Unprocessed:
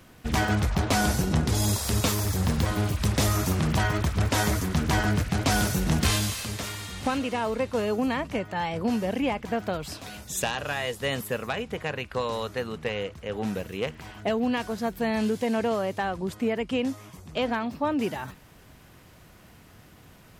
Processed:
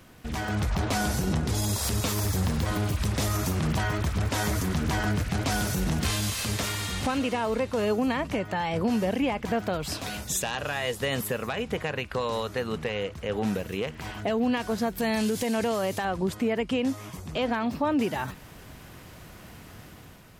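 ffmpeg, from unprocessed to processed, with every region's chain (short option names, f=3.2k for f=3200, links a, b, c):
-filter_complex "[0:a]asettb=1/sr,asplit=3[a][b][c];[a]atrim=end=14.984[d];[b]atrim=start=14.98:end=16.05,asetpts=PTS-STARTPTS,afade=t=in:d=0.004:c=qsin,afade=t=out:st=1.066:d=0.004:c=qsin,highshelf=f=4.1k:g=10.5,acompressor=threshold=-28dB:ratio=5:attack=3.2:release=140:knee=1:detection=peak[e];[c]atrim=start=16.046[f];[d][e]acrossfade=d=0.004:c1=hsin:c2=qsin[g];[g][f]acrossfade=d=0.004:c1=qsin:c2=hsin,alimiter=limit=-24dB:level=0:latency=1:release=211,dynaudnorm=f=110:g=9:m=6dB"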